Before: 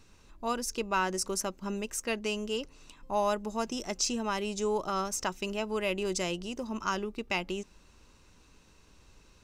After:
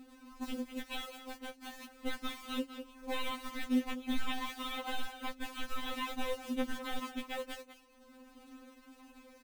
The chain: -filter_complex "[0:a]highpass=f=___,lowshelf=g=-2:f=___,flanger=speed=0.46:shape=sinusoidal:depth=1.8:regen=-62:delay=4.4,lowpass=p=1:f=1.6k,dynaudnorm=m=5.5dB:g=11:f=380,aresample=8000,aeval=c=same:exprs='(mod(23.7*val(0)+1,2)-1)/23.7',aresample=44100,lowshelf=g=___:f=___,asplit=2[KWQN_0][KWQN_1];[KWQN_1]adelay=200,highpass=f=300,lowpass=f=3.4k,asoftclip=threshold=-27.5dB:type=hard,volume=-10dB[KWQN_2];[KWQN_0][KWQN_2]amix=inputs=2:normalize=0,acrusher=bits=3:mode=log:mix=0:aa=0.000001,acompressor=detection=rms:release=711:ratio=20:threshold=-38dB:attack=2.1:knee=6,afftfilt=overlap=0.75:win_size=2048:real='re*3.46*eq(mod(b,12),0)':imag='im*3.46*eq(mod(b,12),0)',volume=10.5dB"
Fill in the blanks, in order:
44, 160, 10.5, 370